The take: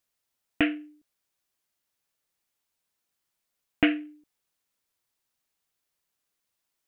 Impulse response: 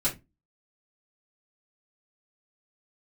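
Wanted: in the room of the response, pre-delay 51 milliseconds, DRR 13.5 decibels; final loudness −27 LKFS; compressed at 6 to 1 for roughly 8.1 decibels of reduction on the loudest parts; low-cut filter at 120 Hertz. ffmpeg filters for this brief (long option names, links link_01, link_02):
-filter_complex "[0:a]highpass=120,acompressor=threshold=-25dB:ratio=6,asplit=2[link_01][link_02];[1:a]atrim=start_sample=2205,adelay=51[link_03];[link_02][link_03]afir=irnorm=-1:irlink=0,volume=-21dB[link_04];[link_01][link_04]amix=inputs=2:normalize=0,volume=7dB"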